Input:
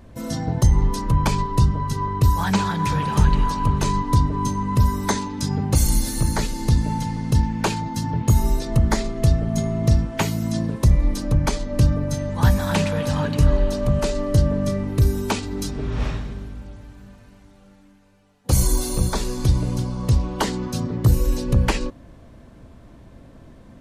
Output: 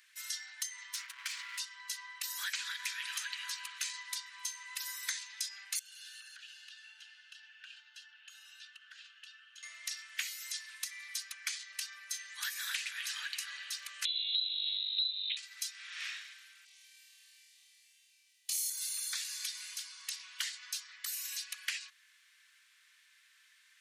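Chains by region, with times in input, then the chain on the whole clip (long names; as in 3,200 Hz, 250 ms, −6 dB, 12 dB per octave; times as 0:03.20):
0:00.94–0:01.59: lower of the sound and its delayed copy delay 3.8 ms + high-shelf EQ 9,900 Hz −5.5 dB + downward compressor 2 to 1, threshold −25 dBFS
0:05.79–0:09.63: pair of resonant band-passes 2,100 Hz, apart 0.85 octaves + downward compressor 10 to 1, threshold −44 dBFS
0:14.05–0:15.37: phase distortion by the signal itself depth 0.62 ms + voice inversion scrambler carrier 4,000 Hz + Butterworth high-pass 2,300 Hz
0:16.65–0:18.70: phaser with its sweep stopped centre 600 Hz, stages 4 + comb filter 2.6 ms, depth 42% + flutter between parallel walls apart 4.4 metres, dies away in 0.66 s
whole clip: Butterworth high-pass 1,700 Hz 36 dB per octave; downward compressor 4 to 1, threshold −35 dBFS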